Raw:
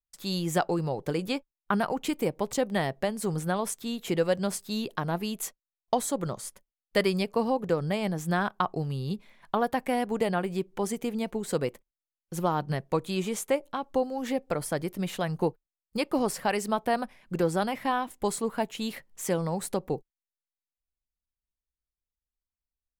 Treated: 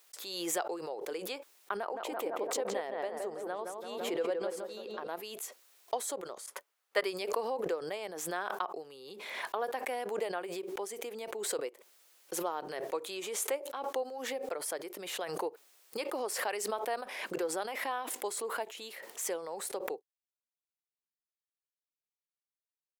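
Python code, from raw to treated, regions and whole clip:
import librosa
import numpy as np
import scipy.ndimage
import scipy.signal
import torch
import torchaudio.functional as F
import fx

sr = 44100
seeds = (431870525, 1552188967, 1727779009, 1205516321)

y = fx.chain(x, sr, fx.high_shelf(hz=2200.0, db=-9.5),
    fx.echo_filtered(ms=168, feedback_pct=52, hz=1800.0, wet_db=-3.5), at=(1.77, 5.09))
y = fx.chain(y, sr, fx.peak_eq(hz=1200.0, db=9.5, octaves=1.8),
    fx.upward_expand(threshold_db=-29.0, expansion=2.5), at=(6.46, 7.04))
y = scipy.signal.sosfilt(scipy.signal.cheby1(3, 1.0, 400.0, 'highpass', fs=sr, output='sos'), y)
y = fx.pre_swell(y, sr, db_per_s=38.0)
y = y * 10.0 ** (-7.5 / 20.0)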